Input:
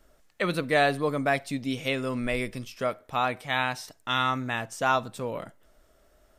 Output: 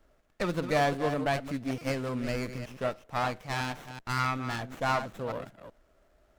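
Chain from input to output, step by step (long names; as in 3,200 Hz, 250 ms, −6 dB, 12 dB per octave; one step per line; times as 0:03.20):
delay that plays each chunk backwards 190 ms, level −9.5 dB
buffer that repeats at 0:01.78, samples 128, times 10
windowed peak hold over 9 samples
level −3 dB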